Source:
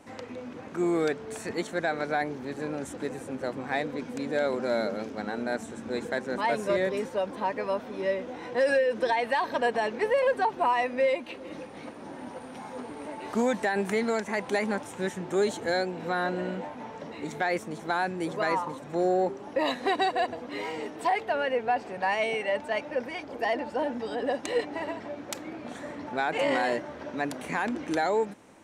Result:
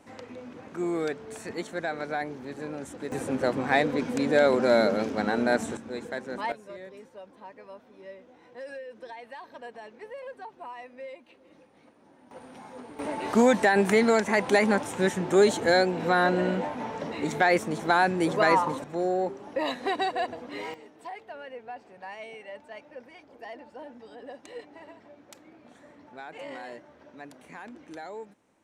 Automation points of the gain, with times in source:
-3 dB
from 3.12 s +6.5 dB
from 5.77 s -4 dB
from 6.52 s -16.5 dB
from 12.31 s -5 dB
from 12.99 s +6 dB
from 18.84 s -2 dB
from 20.74 s -14 dB

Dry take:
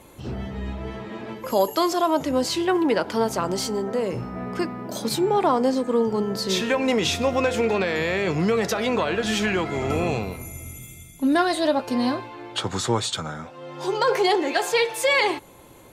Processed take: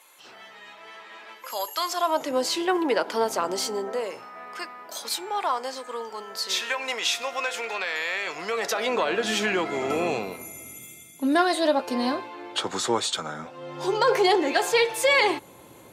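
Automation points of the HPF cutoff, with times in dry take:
1.8 s 1200 Hz
2.32 s 380 Hz
3.82 s 380 Hz
4.31 s 990 Hz
8.24 s 990 Hz
9.17 s 280 Hz
13.24 s 280 Hz
13.68 s 99 Hz

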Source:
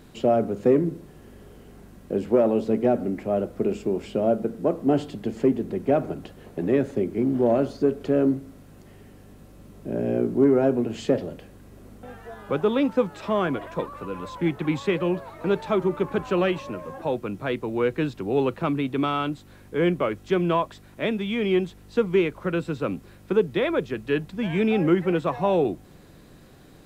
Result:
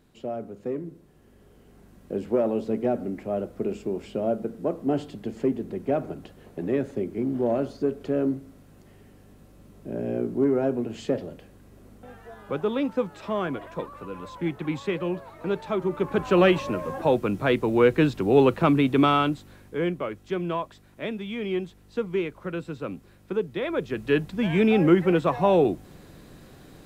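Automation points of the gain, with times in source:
0.91 s -12 dB
2.12 s -4 dB
15.79 s -4 dB
16.46 s +5 dB
19.13 s +5 dB
19.96 s -6 dB
23.59 s -6 dB
24.06 s +2 dB

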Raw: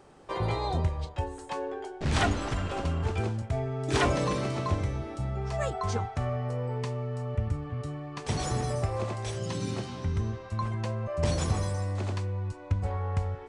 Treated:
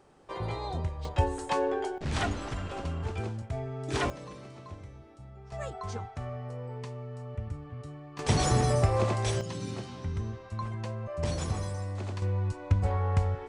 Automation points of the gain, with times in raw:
-5 dB
from 1.05 s +6 dB
from 1.98 s -4.5 dB
from 4.1 s -16 dB
from 5.52 s -7 dB
from 8.19 s +5 dB
from 9.41 s -4 dB
from 12.22 s +3 dB

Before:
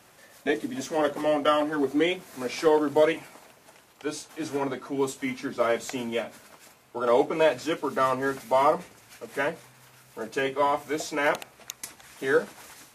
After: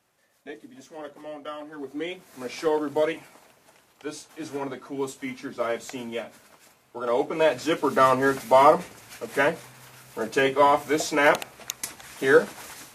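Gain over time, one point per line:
1.57 s -14 dB
2.45 s -3 dB
7.15 s -3 dB
7.86 s +5.5 dB

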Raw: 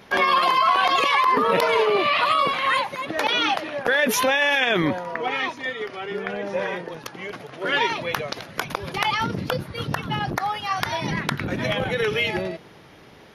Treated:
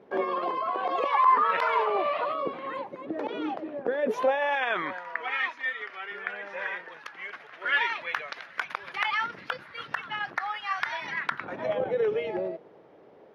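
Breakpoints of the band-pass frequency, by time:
band-pass, Q 1.7
0.84 s 410 Hz
1.52 s 1600 Hz
2.51 s 340 Hz
3.87 s 340 Hz
4.99 s 1700 Hz
11.21 s 1700 Hz
11.81 s 510 Hz

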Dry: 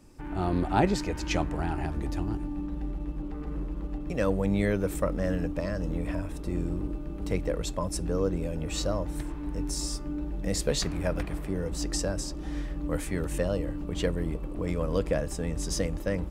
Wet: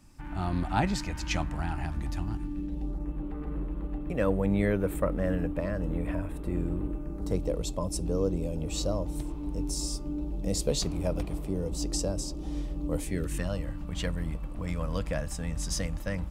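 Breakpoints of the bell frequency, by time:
bell -14 dB 0.84 oct
2.33 s 430 Hz
2.85 s 1700 Hz
3.15 s 5600 Hz
6.85 s 5600 Hz
7.49 s 1700 Hz
12.98 s 1700 Hz
13.52 s 390 Hz

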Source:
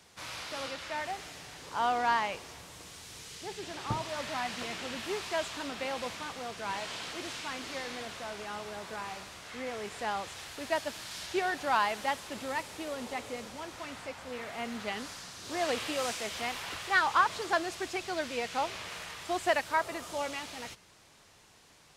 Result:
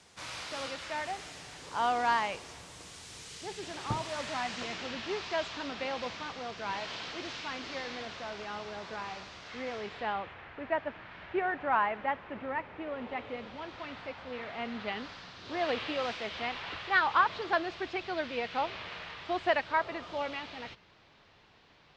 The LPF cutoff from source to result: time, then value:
LPF 24 dB/oct
4.12 s 9900 Hz
4.97 s 5500 Hz
9.74 s 5500 Hz
10.38 s 2300 Hz
12.73 s 2300 Hz
13.71 s 4100 Hz

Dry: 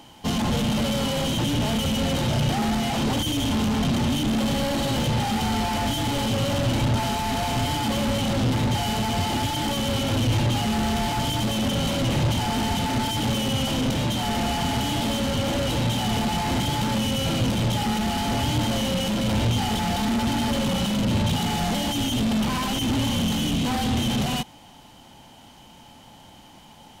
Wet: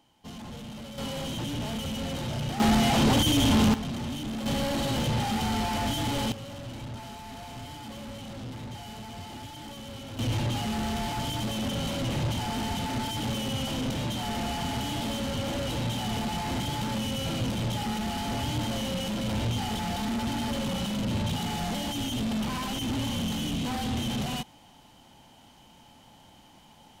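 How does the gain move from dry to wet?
-17.5 dB
from 0.98 s -9 dB
from 2.6 s +2 dB
from 3.74 s -10.5 dB
from 4.46 s -4 dB
from 6.32 s -16.5 dB
from 10.19 s -6.5 dB

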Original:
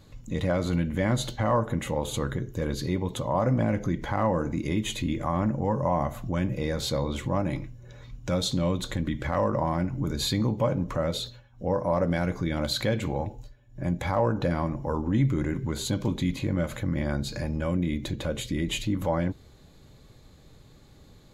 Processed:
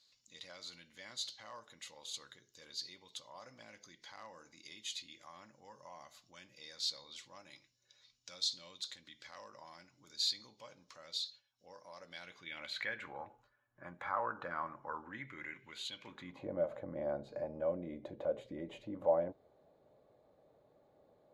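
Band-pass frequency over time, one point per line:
band-pass, Q 3.4
11.98 s 4800 Hz
13.23 s 1300 Hz
14.85 s 1300 Hz
15.94 s 3100 Hz
16.46 s 620 Hz

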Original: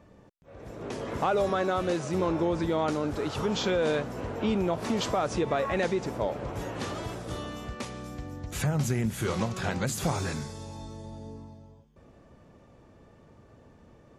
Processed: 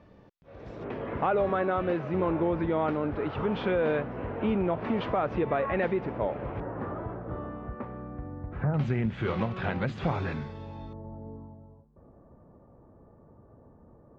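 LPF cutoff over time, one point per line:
LPF 24 dB/oct
4900 Hz
from 0.84 s 2600 Hz
from 6.6 s 1500 Hz
from 8.74 s 3100 Hz
from 10.93 s 1200 Hz

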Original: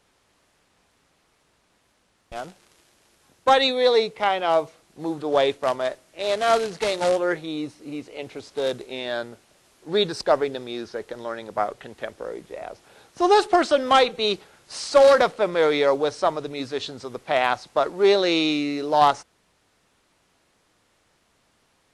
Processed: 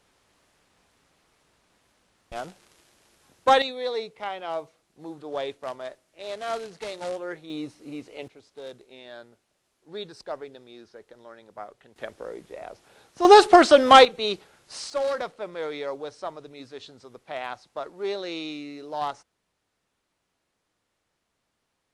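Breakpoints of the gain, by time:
-1 dB
from 3.62 s -11 dB
from 7.5 s -4 dB
from 8.28 s -15 dB
from 11.96 s -4 dB
from 13.25 s +5 dB
from 14.05 s -4 dB
from 14.9 s -12.5 dB

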